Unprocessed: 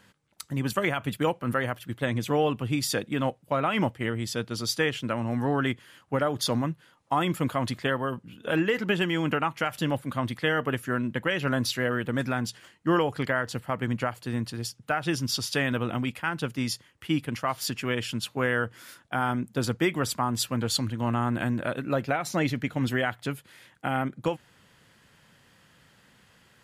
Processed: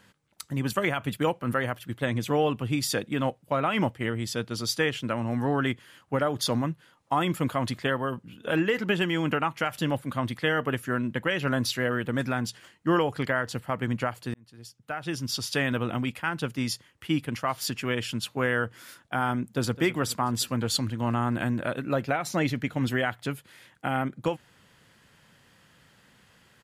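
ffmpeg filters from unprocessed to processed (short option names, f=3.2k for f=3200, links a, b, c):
-filter_complex "[0:a]asplit=2[a][b];[b]afade=t=in:st=19.4:d=0.01,afade=t=out:st=19.81:d=0.01,aecho=0:1:210|420|630|840|1050|1260|1470|1680:0.149624|0.104736|0.0733155|0.0513209|0.0359246|0.0251472|0.0176031|0.0123221[c];[a][c]amix=inputs=2:normalize=0,asplit=2[d][e];[d]atrim=end=14.34,asetpts=PTS-STARTPTS,afade=t=out:st=14.336:d=0.004:c=hsin[f];[e]atrim=start=14.34,asetpts=PTS-STARTPTS,afade=t=in:d=1.26[g];[f][g]concat=n=2:v=0:a=1"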